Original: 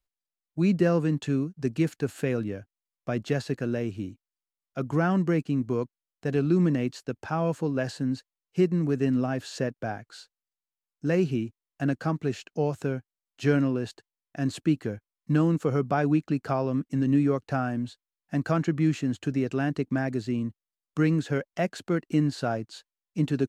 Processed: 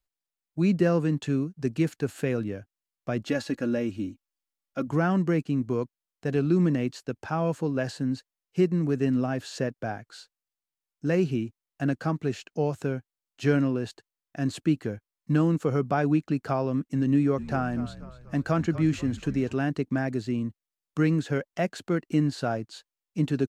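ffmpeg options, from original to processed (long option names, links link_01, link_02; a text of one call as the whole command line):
ffmpeg -i in.wav -filter_complex "[0:a]asettb=1/sr,asplit=3[link_01][link_02][link_03];[link_01]atrim=end=3.254[link_04];[link_02]atrim=start=3.25:end=4.88,asetpts=PTS-STARTPTS,afade=type=in:duration=0.004:curve=qsin,afade=type=out:start_time=1.626:duration=0.004:curve=qsin,aecho=1:1:3.6:0.65,atrim=end_sample=71883[link_05];[link_03]atrim=start=4.876[link_06];[link_04][link_05]acrossfade=duration=0.004:curve1=hsin:curve2=qsin[link_07];[link_07][link_06]acrossfade=duration=0.004:curve1=qsin:curve2=hsin,asplit=3[link_08][link_09][link_10];[link_08]afade=type=out:start_time=17.37:duration=0.02[link_11];[link_09]asplit=6[link_12][link_13][link_14][link_15][link_16][link_17];[link_13]adelay=242,afreqshift=-57,volume=-15dB[link_18];[link_14]adelay=484,afreqshift=-114,volume=-20.5dB[link_19];[link_15]adelay=726,afreqshift=-171,volume=-26dB[link_20];[link_16]adelay=968,afreqshift=-228,volume=-31.5dB[link_21];[link_17]adelay=1210,afreqshift=-285,volume=-37.1dB[link_22];[link_12][link_18][link_19][link_20][link_21][link_22]amix=inputs=6:normalize=0,afade=type=in:start_time=17.37:duration=0.02,afade=type=out:start_time=19.52:duration=0.02[link_23];[link_10]afade=type=in:start_time=19.52:duration=0.02[link_24];[link_11][link_23][link_24]amix=inputs=3:normalize=0" out.wav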